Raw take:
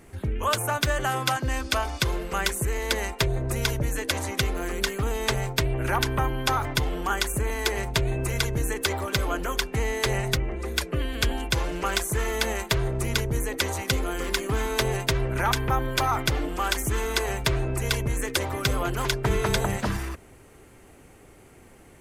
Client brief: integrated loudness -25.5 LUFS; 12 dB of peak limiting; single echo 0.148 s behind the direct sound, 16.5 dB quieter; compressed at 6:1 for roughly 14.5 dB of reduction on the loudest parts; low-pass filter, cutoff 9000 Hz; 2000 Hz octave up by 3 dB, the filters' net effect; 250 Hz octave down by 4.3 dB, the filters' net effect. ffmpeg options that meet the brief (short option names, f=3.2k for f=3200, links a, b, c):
-af "lowpass=9k,equalizer=f=250:t=o:g=-7,equalizer=f=2k:t=o:g=4,acompressor=threshold=-36dB:ratio=6,alimiter=level_in=6.5dB:limit=-24dB:level=0:latency=1,volume=-6.5dB,aecho=1:1:148:0.15,volume=15.5dB"